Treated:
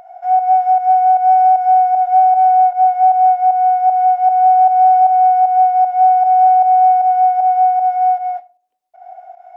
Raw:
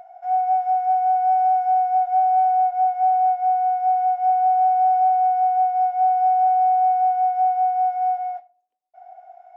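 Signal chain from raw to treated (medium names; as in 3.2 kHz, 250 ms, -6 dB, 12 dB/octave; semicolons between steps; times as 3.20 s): volume shaper 154 bpm, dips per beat 1, -9 dB, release 145 ms; trim +8 dB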